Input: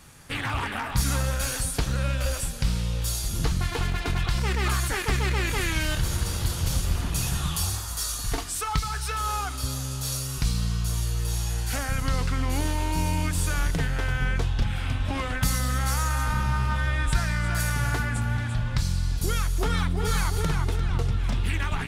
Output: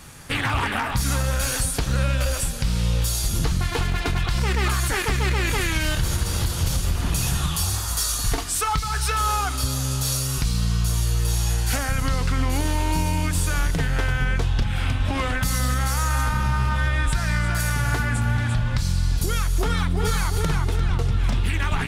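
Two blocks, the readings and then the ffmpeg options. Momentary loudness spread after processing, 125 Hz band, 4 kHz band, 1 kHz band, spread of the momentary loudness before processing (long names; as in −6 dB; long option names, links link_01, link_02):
2 LU, +3.5 dB, +4.0 dB, +4.0 dB, 3 LU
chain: -af "alimiter=limit=-19.5dB:level=0:latency=1:release=258,volume=7dB"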